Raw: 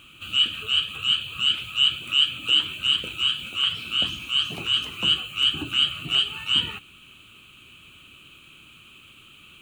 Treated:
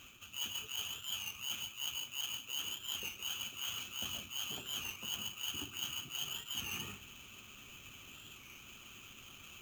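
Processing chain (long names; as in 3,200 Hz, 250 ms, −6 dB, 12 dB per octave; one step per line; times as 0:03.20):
notch comb filter 160 Hz
on a send at −6 dB: convolution reverb RT60 0.50 s, pre-delay 121 ms
on the sum: sample-rate reduction 9,600 Hz, jitter 0%
harmonic and percussive parts rebalanced harmonic −5 dB
reversed playback
downward compressor 6 to 1, threshold −38 dBFS, peak gain reduction 19 dB
reversed playback
wow of a warped record 33 1/3 rpm, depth 100 cents
level −1.5 dB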